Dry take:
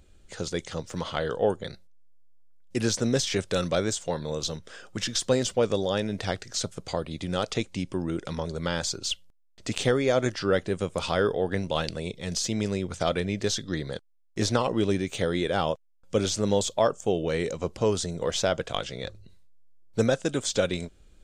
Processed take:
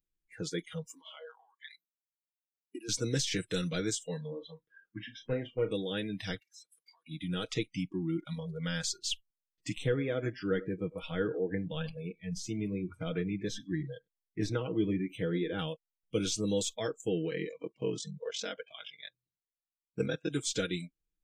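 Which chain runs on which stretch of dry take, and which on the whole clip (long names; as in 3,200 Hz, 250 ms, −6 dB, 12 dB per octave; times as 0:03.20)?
0:00.86–0:02.89: high-shelf EQ 4,600 Hz +5 dB + downward compressor 12 to 1, threshold −35 dBFS + auto-filter high-pass saw up 1.1 Hz 240–2,200 Hz
0:04.27–0:05.71: low-pass filter 2,100 Hz + tube saturation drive 15 dB, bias 0.5 + flutter between parallel walls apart 6.1 metres, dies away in 0.21 s
0:06.39–0:07.07: high-pass filter 1,000 Hz + downward compressor 3 to 1, threshold −45 dBFS
0:09.72–0:15.59: high-shelf EQ 2,200 Hz −10 dB + single-tap delay 100 ms −15.5 dB
0:17.29–0:20.30: ring modulation 22 Hz + band-pass filter 100–6,800 Hz
whole clip: noise reduction from a noise print of the clip's start 29 dB; flat-topped bell 820 Hz −12.5 dB 1.3 octaves; comb filter 6.3 ms, depth 68%; level −6 dB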